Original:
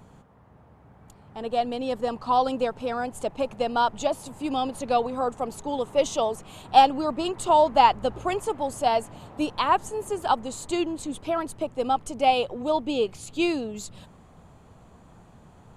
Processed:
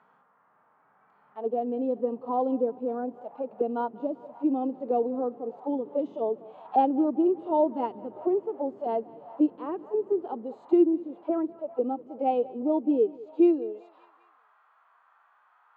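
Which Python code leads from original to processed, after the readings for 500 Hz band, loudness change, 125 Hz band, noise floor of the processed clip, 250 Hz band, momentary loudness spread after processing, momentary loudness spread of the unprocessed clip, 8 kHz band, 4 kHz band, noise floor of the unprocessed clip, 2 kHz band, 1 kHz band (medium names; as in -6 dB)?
-1.0 dB, -3.0 dB, under -10 dB, -65 dBFS, +4.0 dB, 12 LU, 11 LU, under -40 dB, under -25 dB, -53 dBFS, under -15 dB, -9.0 dB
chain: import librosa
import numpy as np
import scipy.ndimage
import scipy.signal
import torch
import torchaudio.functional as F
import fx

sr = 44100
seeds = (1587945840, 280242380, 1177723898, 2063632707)

y = scipy.signal.sosfilt(scipy.signal.butter(2, 3800.0, 'lowpass', fs=sr, output='sos'), x)
y = fx.hpss(y, sr, part='percussive', gain_db=-17)
y = fx.filter_sweep_highpass(y, sr, from_hz=200.0, to_hz=1000.0, start_s=12.82, end_s=14.42, q=1.1)
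y = fx.echo_feedback(y, sr, ms=195, feedback_pct=54, wet_db=-21.0)
y = fx.auto_wah(y, sr, base_hz=350.0, top_hz=1400.0, q=2.3, full_db=-27.5, direction='down')
y = y * 10.0 ** (5.5 / 20.0)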